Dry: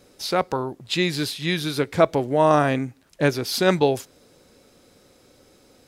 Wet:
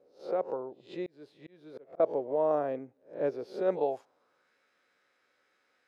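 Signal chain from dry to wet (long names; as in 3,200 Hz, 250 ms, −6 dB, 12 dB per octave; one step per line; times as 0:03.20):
peak hold with a rise ahead of every peak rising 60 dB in 0.32 s
band-pass filter sweep 510 Hz → 1,700 Hz, 0:03.74–0:04.51
0:01.06–0:02.00: volume swells 502 ms
level −6 dB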